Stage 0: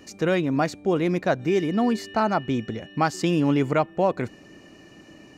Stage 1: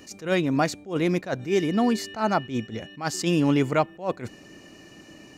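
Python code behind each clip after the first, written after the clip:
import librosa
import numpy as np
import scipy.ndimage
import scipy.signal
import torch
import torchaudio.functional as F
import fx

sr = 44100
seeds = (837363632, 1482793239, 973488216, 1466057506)

y = fx.high_shelf(x, sr, hz=3600.0, db=6.5)
y = fx.attack_slew(y, sr, db_per_s=190.0)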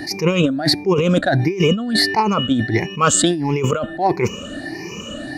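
y = fx.spec_ripple(x, sr, per_octave=0.79, drift_hz=1.5, depth_db=21)
y = fx.high_shelf(y, sr, hz=9200.0, db=-9.0)
y = fx.over_compress(y, sr, threshold_db=-25.0, ratio=-1.0)
y = y * 10.0 ** (8.0 / 20.0)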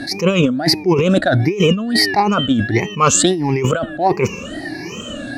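y = fx.wow_flutter(x, sr, seeds[0], rate_hz=2.1, depth_cents=120.0)
y = y * 10.0 ** (2.0 / 20.0)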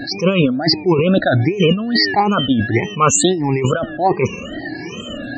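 y = fx.dmg_buzz(x, sr, base_hz=120.0, harmonics=6, level_db=-46.0, tilt_db=-1, odd_only=False)
y = fx.spec_topn(y, sr, count=64)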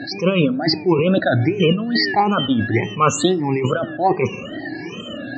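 y = fx.bandpass_edges(x, sr, low_hz=110.0, high_hz=4900.0)
y = fx.rev_fdn(y, sr, rt60_s=0.74, lf_ratio=1.4, hf_ratio=0.4, size_ms=54.0, drr_db=15.5)
y = y * 10.0 ** (-2.0 / 20.0)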